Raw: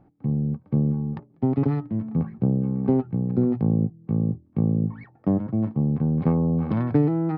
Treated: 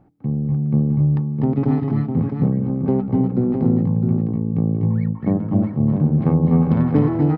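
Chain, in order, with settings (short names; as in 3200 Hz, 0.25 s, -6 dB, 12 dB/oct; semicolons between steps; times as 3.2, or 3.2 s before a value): tapped delay 0.246/0.247/0.266/0.415/0.66 s -6.5/-7.5/-5.5/-19.5/-6.5 dB; gain +2 dB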